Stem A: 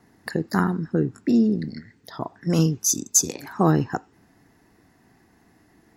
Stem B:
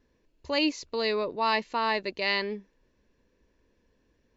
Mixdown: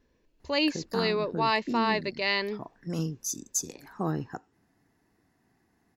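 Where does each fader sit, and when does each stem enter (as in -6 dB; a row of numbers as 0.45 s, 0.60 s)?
-11.5 dB, 0.0 dB; 0.40 s, 0.00 s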